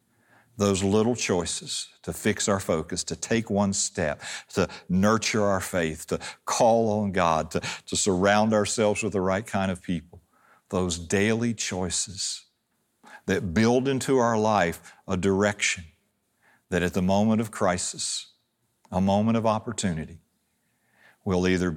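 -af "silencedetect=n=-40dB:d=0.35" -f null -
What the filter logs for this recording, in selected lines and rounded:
silence_start: 0.00
silence_end: 0.58 | silence_duration: 0.58
silence_start: 10.17
silence_end: 10.71 | silence_duration: 0.54
silence_start: 12.39
silence_end: 13.07 | silence_duration: 0.68
silence_start: 15.85
silence_end: 16.71 | silence_duration: 0.86
silence_start: 18.24
silence_end: 18.85 | silence_duration: 0.61
silence_start: 20.16
silence_end: 21.26 | silence_duration: 1.11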